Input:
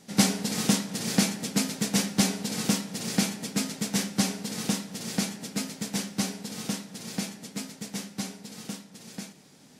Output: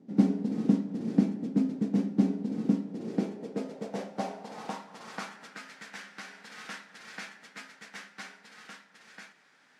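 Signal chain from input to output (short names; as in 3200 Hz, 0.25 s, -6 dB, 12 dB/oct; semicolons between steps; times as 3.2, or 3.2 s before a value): 5.44–6.52 compressor 3:1, threshold -31 dBFS, peak gain reduction 7 dB; band-pass sweep 280 Hz -> 1600 Hz, 2.75–5.72; gain +5.5 dB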